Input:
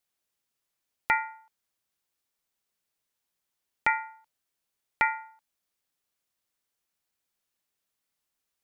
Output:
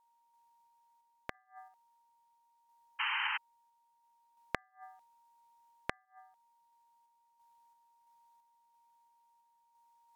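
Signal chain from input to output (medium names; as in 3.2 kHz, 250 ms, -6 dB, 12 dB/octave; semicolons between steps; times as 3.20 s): whistle 1.1 kHz -64 dBFS; inverted gate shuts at -23 dBFS, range -38 dB; random-step tremolo 3.5 Hz; painted sound noise, 2.54–2.87 s, 940–3700 Hz -34 dBFS; tape speed -15%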